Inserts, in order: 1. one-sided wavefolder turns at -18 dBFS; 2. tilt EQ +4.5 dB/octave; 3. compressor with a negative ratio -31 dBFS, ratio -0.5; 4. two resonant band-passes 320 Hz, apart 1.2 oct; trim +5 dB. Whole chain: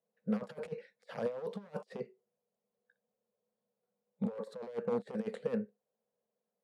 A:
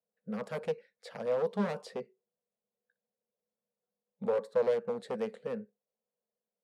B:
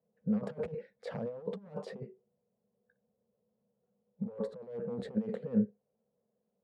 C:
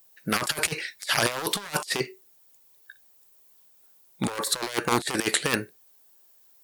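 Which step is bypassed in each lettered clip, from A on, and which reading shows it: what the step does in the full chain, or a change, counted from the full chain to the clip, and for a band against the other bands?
3, crest factor change -3.0 dB; 2, 125 Hz band +6.0 dB; 4, 4 kHz band +22.5 dB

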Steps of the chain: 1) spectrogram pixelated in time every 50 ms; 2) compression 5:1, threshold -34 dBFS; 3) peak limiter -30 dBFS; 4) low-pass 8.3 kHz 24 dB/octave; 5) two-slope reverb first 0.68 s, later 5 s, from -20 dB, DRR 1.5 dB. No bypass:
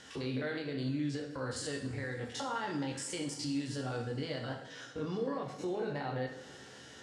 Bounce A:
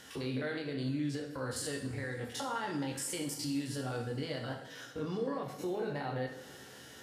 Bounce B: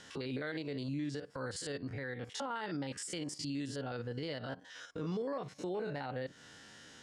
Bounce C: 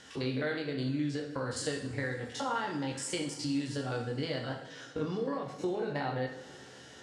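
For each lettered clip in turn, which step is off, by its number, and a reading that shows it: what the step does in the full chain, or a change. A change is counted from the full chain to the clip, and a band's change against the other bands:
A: 4, 8 kHz band +2.5 dB; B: 5, crest factor change -3.0 dB; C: 3, mean gain reduction 1.5 dB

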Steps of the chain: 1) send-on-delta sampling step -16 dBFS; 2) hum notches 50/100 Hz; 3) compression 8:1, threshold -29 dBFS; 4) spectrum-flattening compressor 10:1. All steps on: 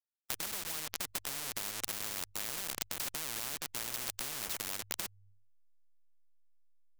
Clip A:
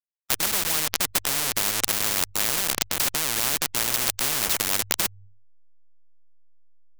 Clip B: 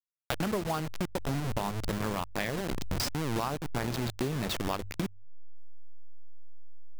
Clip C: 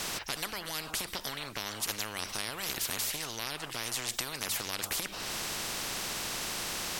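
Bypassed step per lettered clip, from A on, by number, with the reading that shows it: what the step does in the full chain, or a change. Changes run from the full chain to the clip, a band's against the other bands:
3, loudness change +14.5 LU; 4, 8 kHz band -18.5 dB; 1, distortion -2 dB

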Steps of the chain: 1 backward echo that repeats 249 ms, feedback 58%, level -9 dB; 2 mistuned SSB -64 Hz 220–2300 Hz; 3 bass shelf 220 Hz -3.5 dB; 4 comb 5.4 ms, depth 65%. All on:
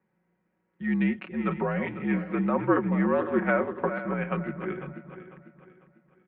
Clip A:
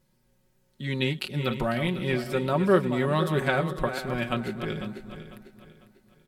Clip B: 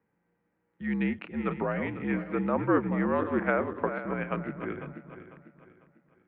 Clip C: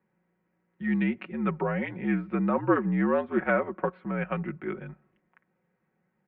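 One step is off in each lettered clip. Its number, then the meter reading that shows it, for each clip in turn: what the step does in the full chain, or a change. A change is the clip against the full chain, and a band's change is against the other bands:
2, 250 Hz band -4.0 dB; 4, loudness change -2.5 LU; 1, momentary loudness spread change -2 LU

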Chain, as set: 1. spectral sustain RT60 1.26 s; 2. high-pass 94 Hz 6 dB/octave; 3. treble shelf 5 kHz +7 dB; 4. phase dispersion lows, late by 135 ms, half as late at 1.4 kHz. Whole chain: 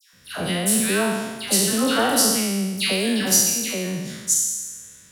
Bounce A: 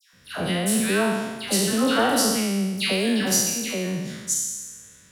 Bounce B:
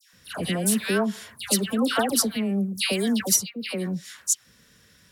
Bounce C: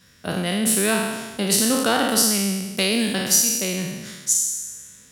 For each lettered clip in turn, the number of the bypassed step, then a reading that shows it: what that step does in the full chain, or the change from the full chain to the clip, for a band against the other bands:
3, 8 kHz band -5.0 dB; 1, 250 Hz band +3.0 dB; 4, crest factor change +2.0 dB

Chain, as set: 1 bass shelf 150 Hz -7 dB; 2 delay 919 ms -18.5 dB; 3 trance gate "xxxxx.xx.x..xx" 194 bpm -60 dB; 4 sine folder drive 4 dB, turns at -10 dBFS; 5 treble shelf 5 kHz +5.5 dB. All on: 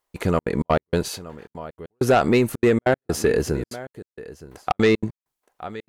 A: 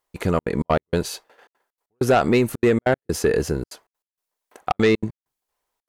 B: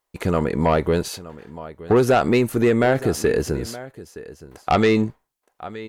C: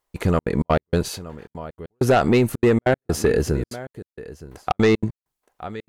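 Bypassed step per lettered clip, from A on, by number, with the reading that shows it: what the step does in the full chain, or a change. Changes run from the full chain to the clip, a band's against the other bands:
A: 2, momentary loudness spread change -7 LU; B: 3, loudness change +2.0 LU; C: 1, 125 Hz band +3.5 dB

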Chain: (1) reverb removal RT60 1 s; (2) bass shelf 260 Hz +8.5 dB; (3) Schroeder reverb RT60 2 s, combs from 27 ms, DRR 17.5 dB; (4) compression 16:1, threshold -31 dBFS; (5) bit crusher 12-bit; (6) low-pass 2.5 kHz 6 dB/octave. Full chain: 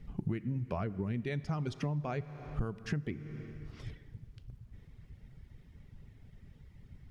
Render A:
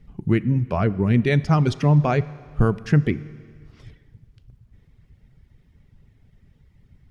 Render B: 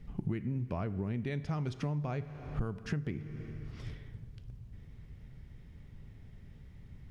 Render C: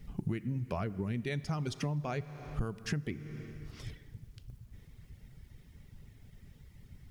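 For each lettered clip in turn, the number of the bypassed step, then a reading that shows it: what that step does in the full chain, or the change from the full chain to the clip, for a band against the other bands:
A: 4, mean gain reduction 9.0 dB; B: 1, 125 Hz band +2.0 dB; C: 6, 4 kHz band +5.0 dB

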